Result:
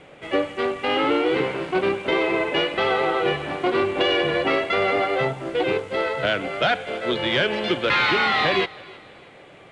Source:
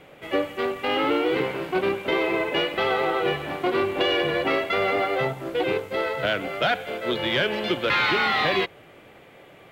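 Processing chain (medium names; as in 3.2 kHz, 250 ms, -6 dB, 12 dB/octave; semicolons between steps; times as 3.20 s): steep low-pass 9.8 kHz 48 dB/octave; thinning echo 316 ms, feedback 41%, level -21.5 dB; trim +2 dB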